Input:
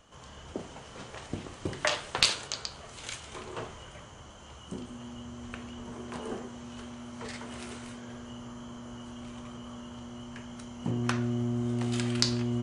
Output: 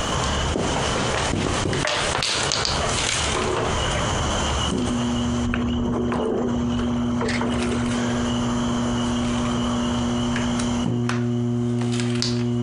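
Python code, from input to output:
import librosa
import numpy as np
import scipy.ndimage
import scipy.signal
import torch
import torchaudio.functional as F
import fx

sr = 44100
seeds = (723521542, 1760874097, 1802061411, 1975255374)

y = fx.envelope_sharpen(x, sr, power=1.5, at=(5.45, 7.9), fade=0.02)
y = fx.env_flatten(y, sr, amount_pct=100)
y = F.gain(torch.from_numpy(y), -3.5).numpy()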